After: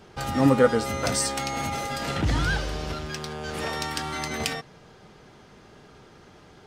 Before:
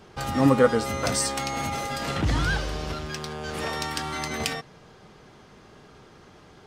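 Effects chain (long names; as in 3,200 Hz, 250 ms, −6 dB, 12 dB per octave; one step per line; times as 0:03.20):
notch filter 1,100 Hz, Q 19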